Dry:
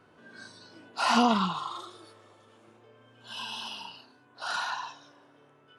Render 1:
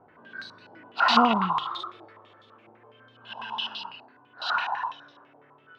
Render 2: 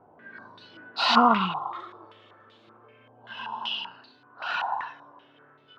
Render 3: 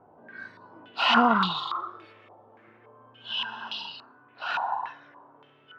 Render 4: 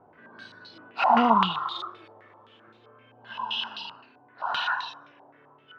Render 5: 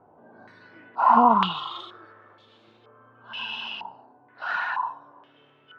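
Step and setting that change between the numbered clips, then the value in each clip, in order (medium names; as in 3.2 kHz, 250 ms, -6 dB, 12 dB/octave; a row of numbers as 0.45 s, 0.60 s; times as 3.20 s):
step-sequenced low-pass, rate: 12 Hz, 5.2 Hz, 3.5 Hz, 7.7 Hz, 2.1 Hz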